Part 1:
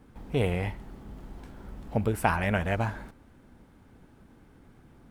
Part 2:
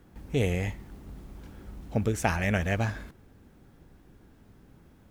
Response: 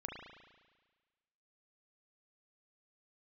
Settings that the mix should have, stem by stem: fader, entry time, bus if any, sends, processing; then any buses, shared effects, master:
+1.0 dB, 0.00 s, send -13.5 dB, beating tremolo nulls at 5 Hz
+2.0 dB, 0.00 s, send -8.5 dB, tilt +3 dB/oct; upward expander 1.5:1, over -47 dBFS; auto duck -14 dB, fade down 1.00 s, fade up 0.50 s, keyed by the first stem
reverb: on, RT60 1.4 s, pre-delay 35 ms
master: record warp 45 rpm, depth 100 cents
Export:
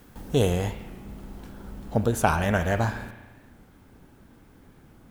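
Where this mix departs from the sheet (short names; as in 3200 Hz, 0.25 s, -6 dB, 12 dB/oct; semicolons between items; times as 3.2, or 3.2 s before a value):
stem 1: missing beating tremolo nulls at 5 Hz; stem 2: missing upward expander 1.5:1, over -47 dBFS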